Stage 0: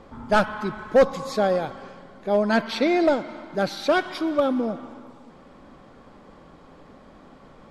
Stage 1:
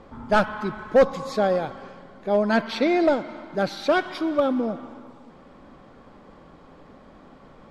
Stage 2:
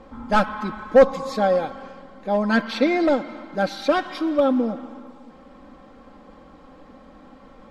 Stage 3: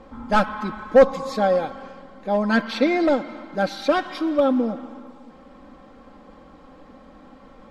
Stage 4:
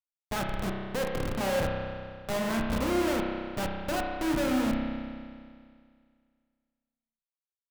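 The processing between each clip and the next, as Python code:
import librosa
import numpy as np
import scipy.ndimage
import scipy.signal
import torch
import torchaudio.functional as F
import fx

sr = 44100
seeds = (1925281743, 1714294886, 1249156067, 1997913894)

y1 = fx.high_shelf(x, sr, hz=6200.0, db=-6.0)
y2 = y1 + 0.57 * np.pad(y1, (int(3.8 * sr / 1000.0), 0))[:len(y1)]
y3 = y2
y4 = fx.schmitt(y3, sr, flips_db=-23.0)
y4 = fx.rev_spring(y4, sr, rt60_s=2.1, pass_ms=(31,), chirp_ms=55, drr_db=0.0)
y4 = y4 * 10.0 ** (-7.0 / 20.0)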